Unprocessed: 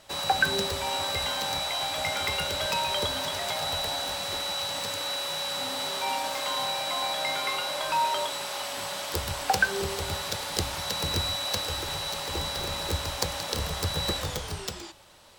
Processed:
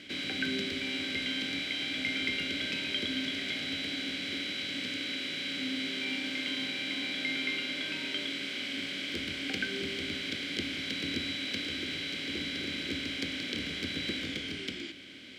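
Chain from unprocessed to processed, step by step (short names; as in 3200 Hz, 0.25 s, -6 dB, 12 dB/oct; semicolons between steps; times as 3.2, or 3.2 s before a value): per-bin compression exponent 0.6; vowel filter i; gain +7.5 dB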